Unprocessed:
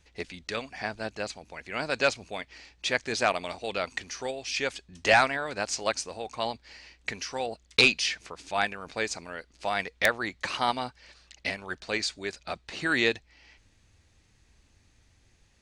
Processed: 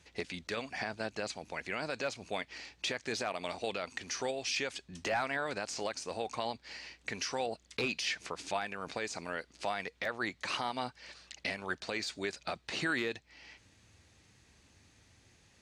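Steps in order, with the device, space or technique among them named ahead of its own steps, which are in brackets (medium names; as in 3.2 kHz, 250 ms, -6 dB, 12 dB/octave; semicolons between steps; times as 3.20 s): podcast mastering chain (high-pass 93 Hz 12 dB/octave; de-esser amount 75%; compression 2:1, threshold -36 dBFS, peak gain reduction 9 dB; peak limiter -25 dBFS, peak gain reduction 8 dB; trim +3 dB; MP3 112 kbps 32 kHz)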